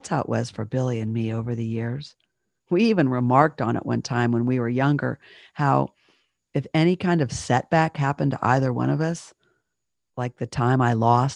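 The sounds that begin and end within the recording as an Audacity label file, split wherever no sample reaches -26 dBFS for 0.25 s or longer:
2.720000	5.140000	sound
5.590000	5.850000	sound
6.560000	9.170000	sound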